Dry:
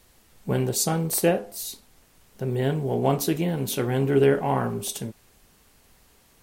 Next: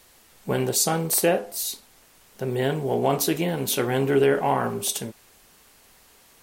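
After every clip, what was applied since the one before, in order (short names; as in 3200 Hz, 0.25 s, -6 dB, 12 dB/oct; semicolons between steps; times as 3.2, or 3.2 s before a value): low shelf 260 Hz -10.5 dB; in parallel at +3 dB: limiter -17.5 dBFS, peak gain reduction 7.5 dB; on the sum: gain -2.5 dB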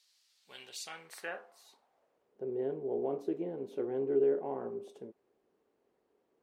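band-pass sweep 4600 Hz -> 390 Hz, 0.36–2.38; gain -7.5 dB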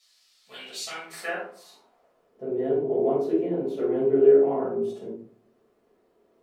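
shoebox room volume 370 m³, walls furnished, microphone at 6.3 m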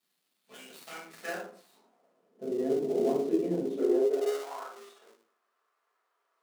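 switching dead time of 0.086 ms; high-pass sweep 200 Hz -> 1200 Hz, 3.72–4.47; ending taper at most 170 dB/s; gain -6 dB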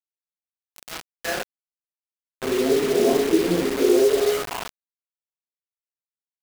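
bit-crush 6-bit; gain +8.5 dB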